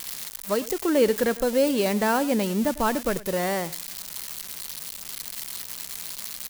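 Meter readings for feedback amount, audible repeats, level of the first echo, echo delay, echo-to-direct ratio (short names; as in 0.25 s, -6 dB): no steady repeat, 1, -18.5 dB, 0.101 s, -18.5 dB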